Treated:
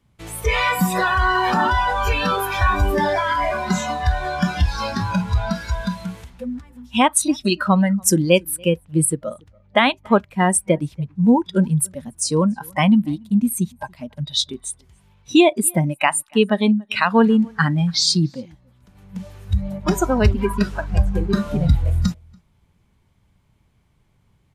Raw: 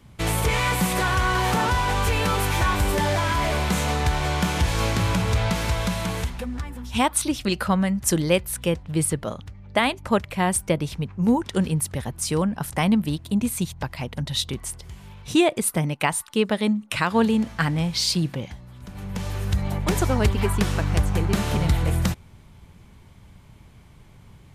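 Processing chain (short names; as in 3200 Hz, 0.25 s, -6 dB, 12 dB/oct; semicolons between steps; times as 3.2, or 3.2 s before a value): spectral noise reduction 18 dB; outdoor echo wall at 49 m, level -29 dB; gain +5.5 dB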